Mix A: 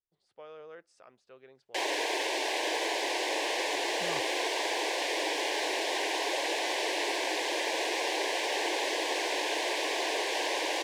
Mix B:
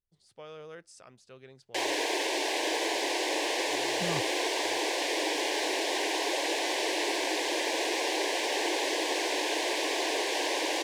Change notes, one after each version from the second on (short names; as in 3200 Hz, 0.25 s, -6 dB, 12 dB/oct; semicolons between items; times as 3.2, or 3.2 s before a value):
speech: remove LPF 1700 Hz 6 dB/oct; master: add tone controls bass +15 dB, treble +3 dB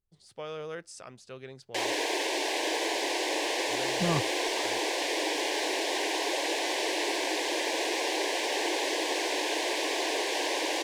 speech +7.0 dB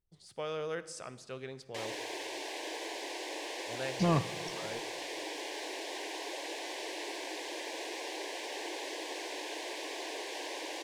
background -10.5 dB; reverb: on, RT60 1.3 s